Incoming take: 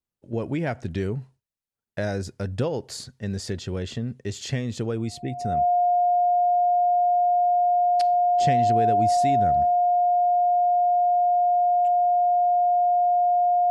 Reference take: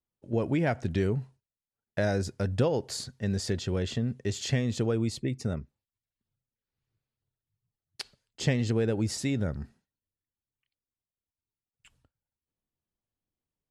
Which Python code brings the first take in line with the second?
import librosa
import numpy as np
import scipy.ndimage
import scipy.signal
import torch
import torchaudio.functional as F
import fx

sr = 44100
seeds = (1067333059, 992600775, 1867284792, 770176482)

y = fx.notch(x, sr, hz=710.0, q=30.0)